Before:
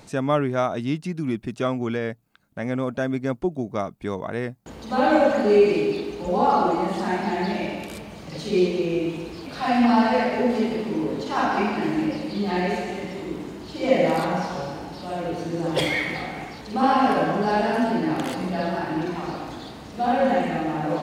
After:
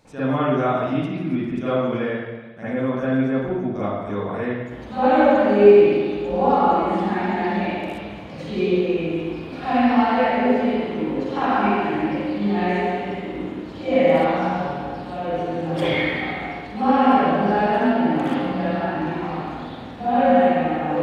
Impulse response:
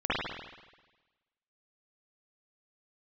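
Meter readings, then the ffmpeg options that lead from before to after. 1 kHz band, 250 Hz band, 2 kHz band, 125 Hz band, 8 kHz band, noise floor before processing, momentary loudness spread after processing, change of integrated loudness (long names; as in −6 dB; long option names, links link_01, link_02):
+3.0 dB, +3.0 dB, +2.0 dB, +2.5 dB, below −10 dB, −43 dBFS, 14 LU, +3.0 dB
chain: -filter_complex "[1:a]atrim=start_sample=2205[link_01];[0:a][link_01]afir=irnorm=-1:irlink=0,volume=-10dB"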